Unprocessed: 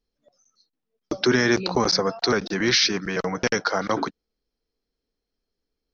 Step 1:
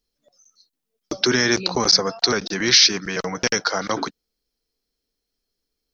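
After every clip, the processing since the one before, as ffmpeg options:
-af "highshelf=f=3.4k:g=12,volume=-1dB"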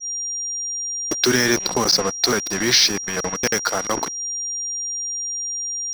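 -af "acrusher=bits=3:mix=0:aa=0.5,aeval=exprs='val(0)+0.0562*sin(2*PI*5700*n/s)':c=same,adynamicequalizer=threshold=0.0282:dfrequency=1900:dqfactor=0.7:tfrequency=1900:tqfactor=0.7:attack=5:release=100:ratio=0.375:range=2:mode=cutabove:tftype=highshelf,volume=1dB"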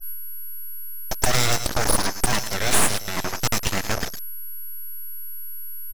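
-af "aecho=1:1:108:0.299,aeval=exprs='abs(val(0))':c=same"

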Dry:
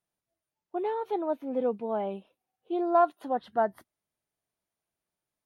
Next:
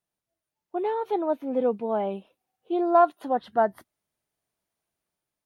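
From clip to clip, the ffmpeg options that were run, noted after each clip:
-af "dynaudnorm=f=270:g=5:m=4dB"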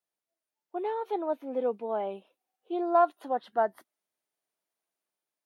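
-af "highpass=300,volume=-4dB"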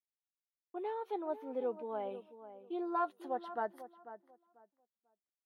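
-filter_complex "[0:a]agate=range=-33dB:threshold=-58dB:ratio=3:detection=peak,bandreject=f=680:w=12,asplit=2[a][b];[b]adelay=493,lowpass=f=1.5k:p=1,volume=-12.5dB,asplit=2[c][d];[d]adelay=493,lowpass=f=1.5k:p=1,volume=0.22,asplit=2[e][f];[f]adelay=493,lowpass=f=1.5k:p=1,volume=0.22[g];[a][c][e][g]amix=inputs=4:normalize=0,volume=-7dB"

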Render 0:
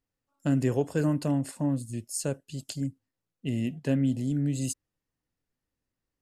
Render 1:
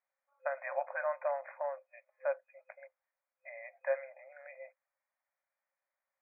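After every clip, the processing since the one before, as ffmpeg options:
-af "afftfilt=real='re*between(b*sr/4096,520,2500)':imag='im*between(b*sr/4096,520,2500)':win_size=4096:overlap=0.75,volume=3dB"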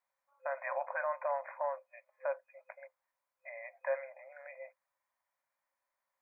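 -af "equalizer=f=1k:t=o:w=0.24:g=9.5,alimiter=level_in=2dB:limit=-24dB:level=0:latency=1:release=32,volume=-2dB,volume=1dB"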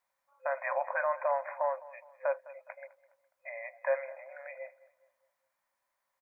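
-filter_complex "[0:a]asplit=2[a][b];[b]adelay=207,lowpass=f=2.2k:p=1,volume=-18.5dB,asplit=2[c][d];[d]adelay=207,lowpass=f=2.2k:p=1,volume=0.44,asplit=2[e][f];[f]adelay=207,lowpass=f=2.2k:p=1,volume=0.44,asplit=2[g][h];[h]adelay=207,lowpass=f=2.2k:p=1,volume=0.44[i];[a][c][e][g][i]amix=inputs=5:normalize=0,volume=4.5dB"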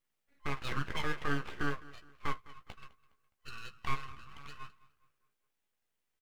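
-filter_complex "[0:a]aeval=exprs='abs(val(0))':c=same,asplit=2[a][b];[b]adelay=14,volume=-7.5dB[c];[a][c]amix=inputs=2:normalize=0,volume=-2dB"

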